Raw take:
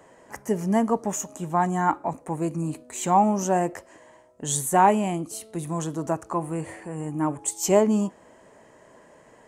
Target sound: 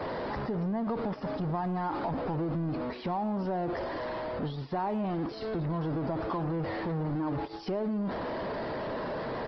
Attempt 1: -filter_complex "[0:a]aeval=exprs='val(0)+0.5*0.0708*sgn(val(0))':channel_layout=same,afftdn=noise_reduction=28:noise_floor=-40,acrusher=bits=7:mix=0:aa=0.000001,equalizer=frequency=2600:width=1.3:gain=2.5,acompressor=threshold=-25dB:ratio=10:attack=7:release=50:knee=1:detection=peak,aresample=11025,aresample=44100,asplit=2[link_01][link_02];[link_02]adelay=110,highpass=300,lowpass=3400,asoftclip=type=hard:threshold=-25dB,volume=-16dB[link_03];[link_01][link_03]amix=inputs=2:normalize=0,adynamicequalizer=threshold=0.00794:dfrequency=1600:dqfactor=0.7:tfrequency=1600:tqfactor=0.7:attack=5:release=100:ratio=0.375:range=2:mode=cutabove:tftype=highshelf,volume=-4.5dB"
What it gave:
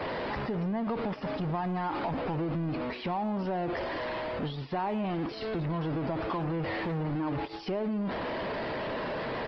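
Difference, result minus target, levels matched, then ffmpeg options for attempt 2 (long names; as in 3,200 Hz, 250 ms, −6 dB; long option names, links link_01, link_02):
2,000 Hz band +4.0 dB
-filter_complex "[0:a]aeval=exprs='val(0)+0.5*0.0708*sgn(val(0))':channel_layout=same,afftdn=noise_reduction=28:noise_floor=-40,acrusher=bits=7:mix=0:aa=0.000001,equalizer=frequency=2600:width=1.3:gain=-6,acompressor=threshold=-25dB:ratio=10:attack=7:release=50:knee=1:detection=peak,aresample=11025,aresample=44100,asplit=2[link_01][link_02];[link_02]adelay=110,highpass=300,lowpass=3400,asoftclip=type=hard:threshold=-25dB,volume=-16dB[link_03];[link_01][link_03]amix=inputs=2:normalize=0,adynamicequalizer=threshold=0.00794:dfrequency=1600:dqfactor=0.7:tfrequency=1600:tqfactor=0.7:attack=5:release=100:ratio=0.375:range=2:mode=cutabove:tftype=highshelf,volume=-4.5dB"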